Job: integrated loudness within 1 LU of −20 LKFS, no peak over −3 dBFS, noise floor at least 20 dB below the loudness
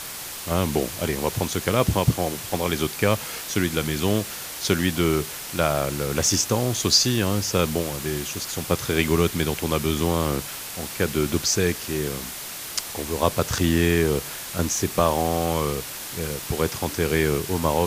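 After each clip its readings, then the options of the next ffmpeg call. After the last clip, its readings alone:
background noise floor −35 dBFS; target noise floor −44 dBFS; integrated loudness −23.5 LKFS; sample peak −4.5 dBFS; target loudness −20.0 LKFS
→ -af "afftdn=noise_reduction=9:noise_floor=-35"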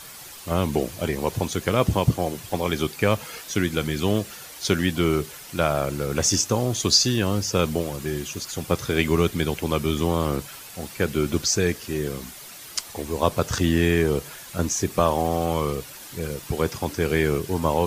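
background noise floor −41 dBFS; target noise floor −44 dBFS
→ -af "afftdn=noise_reduction=6:noise_floor=-41"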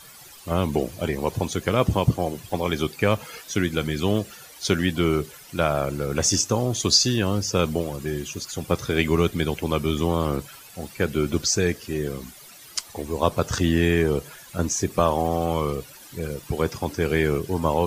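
background noise floor −46 dBFS; integrated loudness −24.0 LKFS; sample peak −4.0 dBFS; target loudness −20.0 LKFS
→ -af "volume=4dB,alimiter=limit=-3dB:level=0:latency=1"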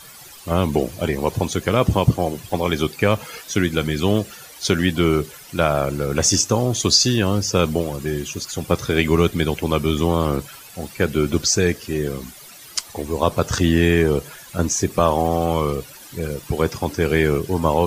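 integrated loudness −20.5 LKFS; sample peak −3.0 dBFS; background noise floor −42 dBFS

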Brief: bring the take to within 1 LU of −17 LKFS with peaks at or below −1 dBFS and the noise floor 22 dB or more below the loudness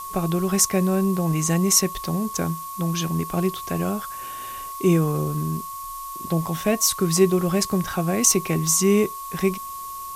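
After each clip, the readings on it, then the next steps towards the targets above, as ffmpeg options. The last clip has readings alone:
interfering tone 1,100 Hz; level of the tone −32 dBFS; background noise floor −34 dBFS; target noise floor −44 dBFS; integrated loudness −22.0 LKFS; sample peak −3.0 dBFS; target loudness −17.0 LKFS
→ -af "bandreject=frequency=1100:width=30"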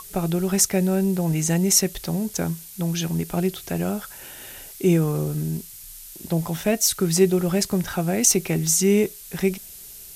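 interfering tone none found; background noise floor −42 dBFS; target noise floor −44 dBFS
→ -af "afftdn=noise_reduction=6:noise_floor=-42"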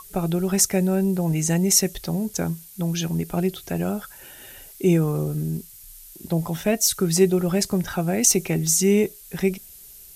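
background noise floor −45 dBFS; integrated loudness −22.0 LKFS; sample peak −3.5 dBFS; target loudness −17.0 LKFS
→ -af "volume=5dB,alimiter=limit=-1dB:level=0:latency=1"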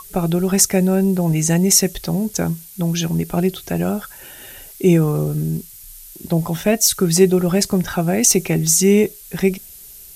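integrated loudness −17.5 LKFS; sample peak −1.0 dBFS; background noise floor −40 dBFS

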